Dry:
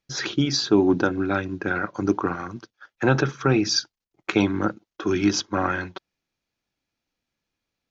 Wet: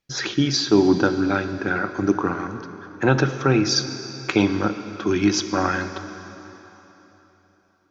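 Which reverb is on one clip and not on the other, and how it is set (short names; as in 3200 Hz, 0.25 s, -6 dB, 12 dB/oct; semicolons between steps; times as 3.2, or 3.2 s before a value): plate-style reverb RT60 3.6 s, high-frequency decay 0.9×, DRR 9 dB; gain +1.5 dB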